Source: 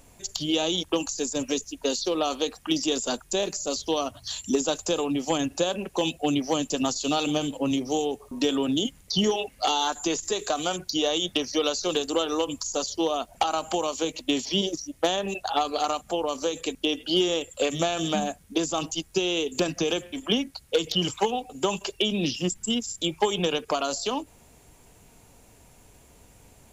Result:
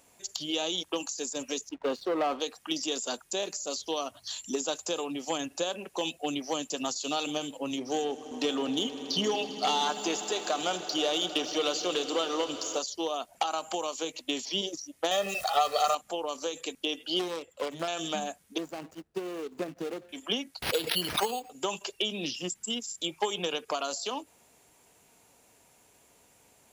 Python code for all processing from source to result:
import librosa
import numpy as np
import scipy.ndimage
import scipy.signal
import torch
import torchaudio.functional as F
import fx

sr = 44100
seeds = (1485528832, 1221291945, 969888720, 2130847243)

y = fx.chain(x, sr, fx.lowpass(hz=1600.0, slope=12),
    fx.leveller(passes=2), at=(1.69, 2.4))
y = fx.chain(y, sr, fx.air_absorb(metres=55.0),
    fx.leveller(passes=1),
    fx.echo_swell(ms=80, loudest=5, wet_db=-18.0), at=(7.78, 12.79))
y = fx.chain(y, sr, fx.zero_step(step_db=-32.5),
    fx.comb(ms=1.6, depth=0.97), at=(15.11, 15.95))
y = fx.chain(y, sr, fx.self_delay(depth_ms=0.29),
    fx.lowpass(hz=1600.0, slope=6), at=(17.19, 17.88))
y = fx.chain(y, sr, fx.median_filter(points=41),
    fx.gate_hold(open_db=-47.0, close_db=-52.0, hold_ms=71.0, range_db=-21, attack_ms=1.4, release_ms=100.0), at=(18.58, 20.09))
y = fx.chain(y, sr, fx.resample_bad(factor=6, down='none', up='hold'),
    fx.pre_swell(db_per_s=53.0), at=(20.62, 21.5))
y = fx.highpass(y, sr, hz=200.0, slope=6)
y = fx.low_shelf(y, sr, hz=310.0, db=-6.5)
y = y * librosa.db_to_amplitude(-4.0)